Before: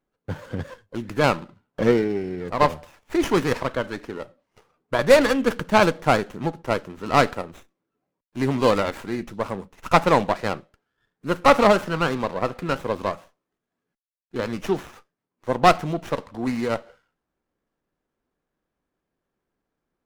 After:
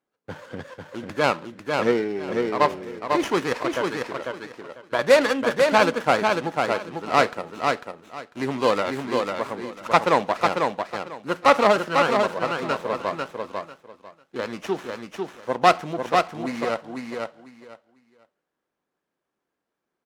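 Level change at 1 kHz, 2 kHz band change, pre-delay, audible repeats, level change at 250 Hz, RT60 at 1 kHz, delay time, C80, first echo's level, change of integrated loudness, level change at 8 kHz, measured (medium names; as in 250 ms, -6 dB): +1.0 dB, +1.0 dB, no reverb, 3, -3.0 dB, no reverb, 497 ms, no reverb, -4.0 dB, -1.0 dB, -0.5 dB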